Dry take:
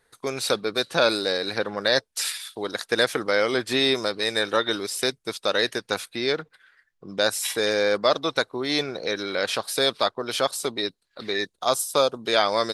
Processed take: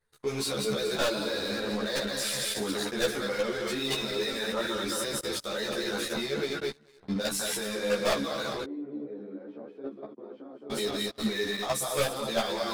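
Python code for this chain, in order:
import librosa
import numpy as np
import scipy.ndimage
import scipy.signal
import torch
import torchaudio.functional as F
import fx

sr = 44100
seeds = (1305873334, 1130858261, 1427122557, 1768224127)

y = fx.reverse_delay_fb(x, sr, ms=108, feedback_pct=65, wet_db=-5)
y = fx.low_shelf(y, sr, hz=220.0, db=9.5)
y = fx.hum_notches(y, sr, base_hz=60, count=5)
y = fx.level_steps(y, sr, step_db=17)
y = fx.leveller(y, sr, passes=3)
y = fx.ladder_bandpass(y, sr, hz=330.0, resonance_pct=45, at=(8.63, 10.7))
y = 10.0 ** (-16.0 / 20.0) * np.tanh(y / 10.0 ** (-16.0 / 20.0))
y = fx.doubler(y, sr, ms=14.0, db=-2)
y = fx.ensemble(y, sr)
y = y * librosa.db_to_amplitude(-5.5)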